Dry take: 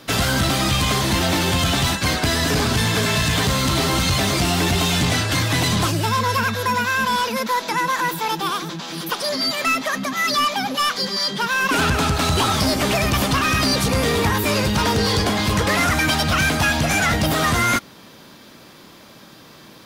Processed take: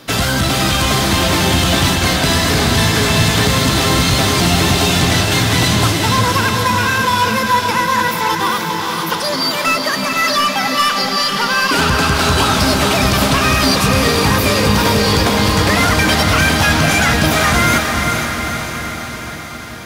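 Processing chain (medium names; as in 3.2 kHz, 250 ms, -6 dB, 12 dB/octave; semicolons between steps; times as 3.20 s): echo that smears into a reverb 452 ms, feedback 64%, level -4 dB; trim +3.5 dB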